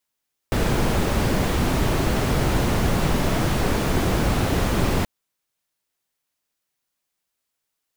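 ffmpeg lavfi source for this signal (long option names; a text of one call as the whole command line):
ffmpeg -f lavfi -i "anoisesrc=color=brown:amplitude=0.468:duration=4.53:sample_rate=44100:seed=1" out.wav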